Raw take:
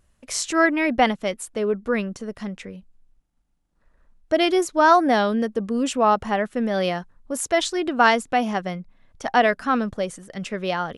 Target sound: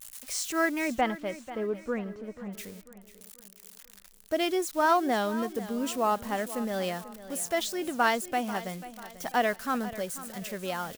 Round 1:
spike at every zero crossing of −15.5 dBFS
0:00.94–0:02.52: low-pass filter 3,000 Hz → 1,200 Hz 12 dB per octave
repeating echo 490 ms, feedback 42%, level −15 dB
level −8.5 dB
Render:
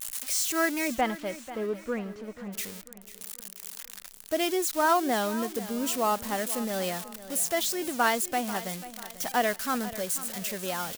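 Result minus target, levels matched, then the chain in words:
spike at every zero crossing: distortion +9 dB
spike at every zero crossing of −25 dBFS
0:00.94–0:02.52: low-pass filter 3,000 Hz → 1,200 Hz 12 dB per octave
repeating echo 490 ms, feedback 42%, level −15 dB
level −8.5 dB

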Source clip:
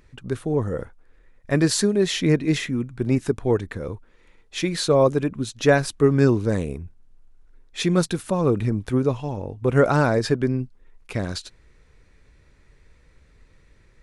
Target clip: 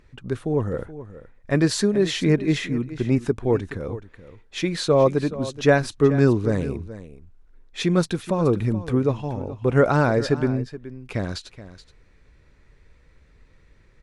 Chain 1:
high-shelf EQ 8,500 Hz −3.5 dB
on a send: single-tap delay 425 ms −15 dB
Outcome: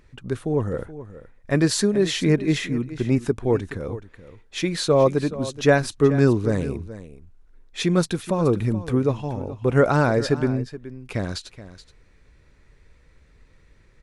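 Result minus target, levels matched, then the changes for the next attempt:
8,000 Hz band +3.0 dB
change: high-shelf EQ 8,500 Hz −11 dB

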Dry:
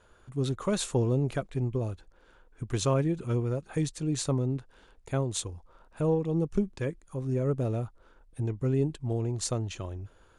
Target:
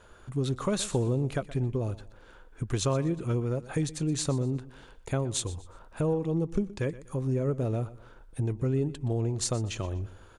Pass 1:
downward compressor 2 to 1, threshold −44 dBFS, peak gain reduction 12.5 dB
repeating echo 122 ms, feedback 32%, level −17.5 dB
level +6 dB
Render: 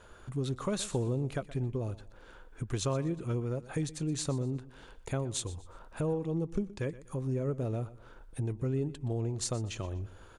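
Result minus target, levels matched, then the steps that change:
downward compressor: peak gain reduction +4.5 dB
change: downward compressor 2 to 1, threshold −35.5 dBFS, peak gain reduction 8 dB

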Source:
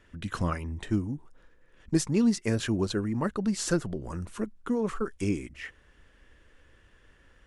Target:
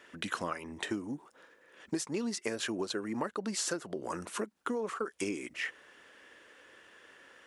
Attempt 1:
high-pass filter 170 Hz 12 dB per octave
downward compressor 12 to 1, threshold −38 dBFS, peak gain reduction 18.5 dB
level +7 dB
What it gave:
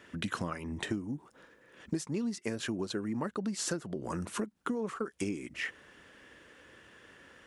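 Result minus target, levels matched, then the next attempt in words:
125 Hz band +7.5 dB
high-pass filter 380 Hz 12 dB per octave
downward compressor 12 to 1, threshold −38 dBFS, peak gain reduction 14.5 dB
level +7 dB

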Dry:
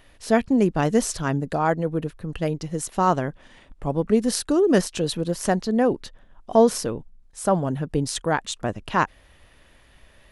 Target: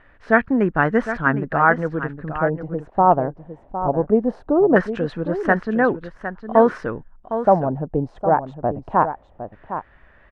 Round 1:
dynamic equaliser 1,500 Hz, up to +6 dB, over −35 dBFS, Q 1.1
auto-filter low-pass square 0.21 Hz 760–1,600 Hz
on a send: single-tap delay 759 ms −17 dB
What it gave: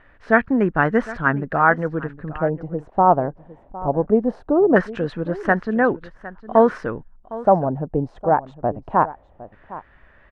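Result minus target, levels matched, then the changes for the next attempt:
echo-to-direct −6.5 dB
change: single-tap delay 759 ms −10.5 dB

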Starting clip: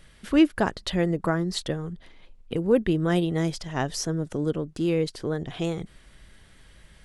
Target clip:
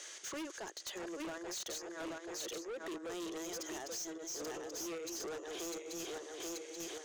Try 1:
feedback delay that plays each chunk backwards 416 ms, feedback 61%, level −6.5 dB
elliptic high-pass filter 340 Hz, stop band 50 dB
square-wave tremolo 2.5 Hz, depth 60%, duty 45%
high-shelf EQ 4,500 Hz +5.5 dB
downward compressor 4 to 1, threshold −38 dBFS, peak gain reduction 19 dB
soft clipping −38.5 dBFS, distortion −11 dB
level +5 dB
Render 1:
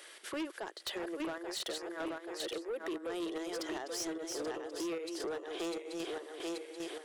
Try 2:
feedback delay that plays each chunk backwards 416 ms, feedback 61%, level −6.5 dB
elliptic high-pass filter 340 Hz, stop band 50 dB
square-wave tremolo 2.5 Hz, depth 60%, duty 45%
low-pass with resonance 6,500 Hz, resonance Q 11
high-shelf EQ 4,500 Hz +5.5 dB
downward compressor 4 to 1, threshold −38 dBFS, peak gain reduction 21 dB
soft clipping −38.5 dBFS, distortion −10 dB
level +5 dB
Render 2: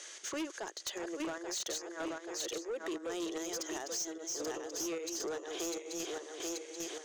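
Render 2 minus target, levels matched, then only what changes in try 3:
soft clipping: distortion −4 dB
change: soft clipping −45 dBFS, distortion −5 dB

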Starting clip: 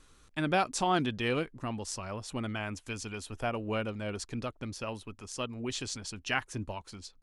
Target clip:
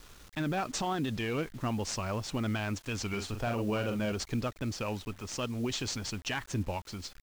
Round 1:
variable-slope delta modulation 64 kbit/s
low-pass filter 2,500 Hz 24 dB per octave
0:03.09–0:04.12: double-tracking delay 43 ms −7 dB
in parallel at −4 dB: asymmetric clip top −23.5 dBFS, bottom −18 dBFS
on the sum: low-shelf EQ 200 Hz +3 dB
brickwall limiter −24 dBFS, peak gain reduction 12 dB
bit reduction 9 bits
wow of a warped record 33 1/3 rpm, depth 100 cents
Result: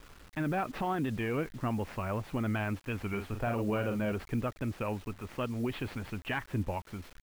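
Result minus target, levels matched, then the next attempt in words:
8,000 Hz band −15.0 dB
variable-slope delta modulation 64 kbit/s
low-pass filter 7,200 Hz 24 dB per octave
0:03.09–0:04.12: double-tracking delay 43 ms −7 dB
in parallel at −4 dB: asymmetric clip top −23.5 dBFS, bottom −18 dBFS
on the sum: low-shelf EQ 200 Hz +3 dB
brickwall limiter −24 dBFS, peak gain reduction 12 dB
bit reduction 9 bits
wow of a warped record 33 1/3 rpm, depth 100 cents

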